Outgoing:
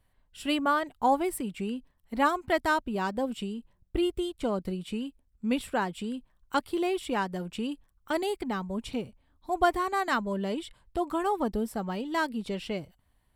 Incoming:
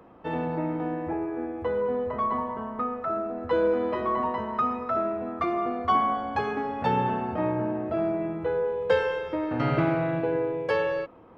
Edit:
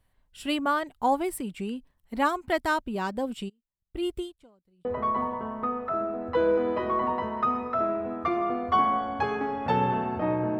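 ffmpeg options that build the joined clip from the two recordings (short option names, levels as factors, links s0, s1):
-filter_complex "[0:a]asplit=3[s0][s1][s2];[s0]afade=t=out:st=3.48:d=0.02[s3];[s1]aeval=exprs='val(0)*pow(10,-35*(0.5-0.5*cos(2*PI*0.97*n/s))/20)':c=same,afade=t=in:st=3.48:d=0.02,afade=t=out:st=4.85:d=0.02[s4];[s2]afade=t=in:st=4.85:d=0.02[s5];[s3][s4][s5]amix=inputs=3:normalize=0,apad=whole_dur=10.59,atrim=end=10.59,atrim=end=4.852[s6];[1:a]atrim=start=2.008:end=7.75[s7];[s6][s7]acrossfade=d=0.004:c1=hsin:c2=hsin"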